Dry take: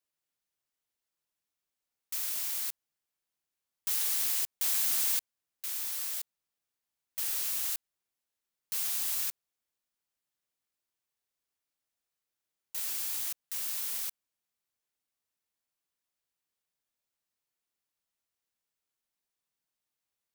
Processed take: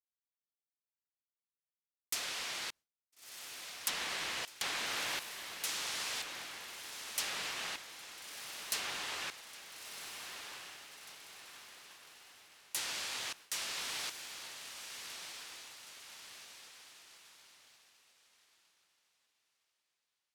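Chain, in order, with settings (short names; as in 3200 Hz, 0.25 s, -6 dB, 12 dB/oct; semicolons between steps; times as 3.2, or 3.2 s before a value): treble ducked by the level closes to 2700 Hz, closed at -28.5 dBFS; diffused feedback echo 1.354 s, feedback 58%, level -7 dB; expander -58 dBFS; gain +7.5 dB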